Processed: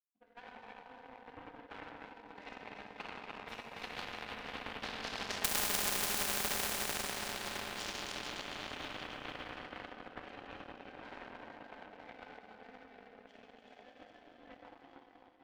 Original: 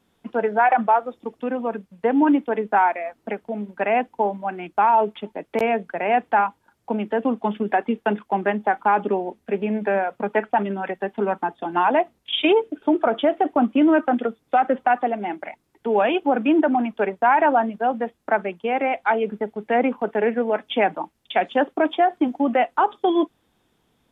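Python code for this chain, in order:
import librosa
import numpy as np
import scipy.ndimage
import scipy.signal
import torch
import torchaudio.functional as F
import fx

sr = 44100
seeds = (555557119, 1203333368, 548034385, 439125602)

y = fx.doppler_pass(x, sr, speed_mps=8, closest_m=3.5, pass_at_s=9.09)
y = fx.high_shelf(y, sr, hz=2600.0, db=10.0)
y = y + 0.42 * np.pad(y, (int(3.9 * sr / 1000.0), 0))[:len(y)]
y = fx.transient(y, sr, attack_db=6, sustain_db=-1)
y = fx.stretch_vocoder_free(y, sr, factor=0.64)
y = (np.mod(10.0 ** (12.5 / 20.0) * y + 1.0, 2.0) - 1.0) / 10.0 ** (12.5 / 20.0)
y = fx.echo_split(y, sr, split_hz=590.0, low_ms=446, high_ms=295, feedback_pct=52, wet_db=-6.0)
y = fx.rev_plate(y, sr, seeds[0], rt60_s=4.8, hf_ratio=1.0, predelay_ms=0, drr_db=-6.5)
y = fx.power_curve(y, sr, exponent=2.0)
y = fx.spectral_comp(y, sr, ratio=4.0)
y = y * 10.0 ** (-4.5 / 20.0)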